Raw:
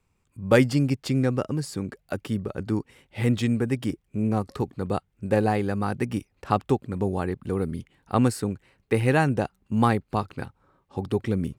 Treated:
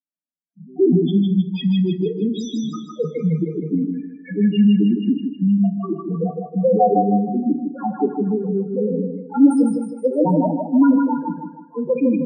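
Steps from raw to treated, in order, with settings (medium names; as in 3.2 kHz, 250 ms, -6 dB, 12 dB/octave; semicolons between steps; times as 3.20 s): gliding tape speed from 63% -> 126%; gate with hold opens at -46 dBFS; in parallel at -1 dB: compression 6:1, threshold -29 dBFS, peak gain reduction 15.5 dB; on the sum: waveshaping leveller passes 3; steep high-pass 160 Hz 96 dB/octave; loudest bins only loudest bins 2; on a send: thinning echo 156 ms, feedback 48%, high-pass 270 Hz, level -3 dB; on the sum: FDN reverb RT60 0.53 s, low-frequency decay 0.9×, high-frequency decay 0.75×, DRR 8.5 dB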